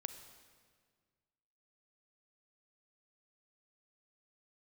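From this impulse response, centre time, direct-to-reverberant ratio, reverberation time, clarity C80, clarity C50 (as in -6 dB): 19 ms, 9.0 dB, 1.7 s, 10.5 dB, 9.5 dB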